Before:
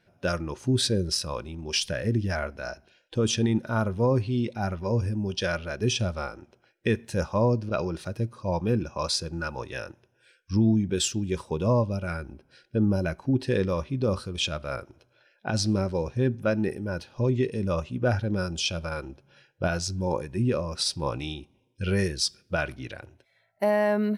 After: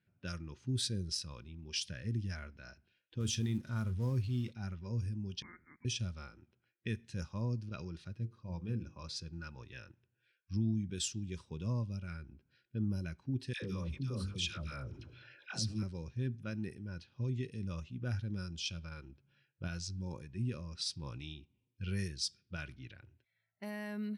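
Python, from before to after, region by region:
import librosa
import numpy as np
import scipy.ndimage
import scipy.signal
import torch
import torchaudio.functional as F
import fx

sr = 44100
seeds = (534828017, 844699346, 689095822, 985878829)

y = fx.chain(x, sr, fx.law_mismatch(coded='mu'),
    fx.peak_eq(hz=80.0, db=6.0, octaves=0.74),
    fx.doubler(ms=32.0, db=-13.5), at=(3.2, 4.52))
y = fx.chain(y, sr, fx.cheby1_highpass(hz=940.0, order=3),
    fx.freq_invert(carrier_hz=2700),
    fx.peak_eq(hz=1200.0, db=-12.0, octaves=0.38), at=(5.42, 5.85))
y = fx.chain(y, sr, fx.high_shelf(hz=2600.0, db=-7.0),
    fx.hum_notches(base_hz=50, count=10), at=(8.15, 9.16))
y = fx.chain(y, sr, fx.hum_notches(base_hz=50, count=9),
    fx.dispersion(late='lows', ms=93.0, hz=890.0),
    fx.env_flatten(amount_pct=50), at=(13.53, 15.83))
y = fx.env_lowpass(y, sr, base_hz=2500.0, full_db=-19.5)
y = scipy.signal.sosfilt(scipy.signal.butter(2, 77.0, 'highpass', fs=sr, output='sos'), y)
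y = fx.tone_stack(y, sr, knobs='6-0-2')
y = y * 10.0 ** (5.5 / 20.0)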